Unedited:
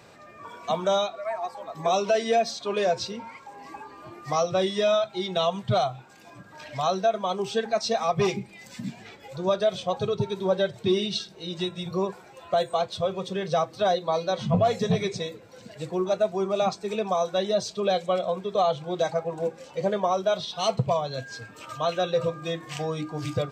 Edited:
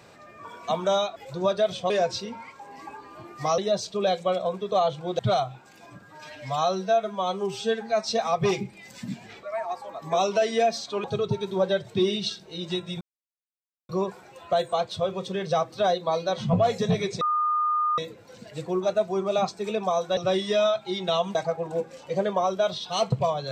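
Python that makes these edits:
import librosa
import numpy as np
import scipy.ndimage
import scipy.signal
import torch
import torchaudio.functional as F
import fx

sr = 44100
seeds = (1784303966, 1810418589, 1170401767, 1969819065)

y = fx.edit(x, sr, fx.swap(start_s=1.16, length_s=1.61, other_s=9.19, other_length_s=0.74),
    fx.swap(start_s=4.45, length_s=1.18, other_s=17.41, other_length_s=1.61),
    fx.stretch_span(start_s=6.46, length_s=1.36, factor=1.5),
    fx.insert_silence(at_s=11.9, length_s=0.88),
    fx.insert_tone(at_s=15.22, length_s=0.77, hz=1220.0, db=-21.0), tone=tone)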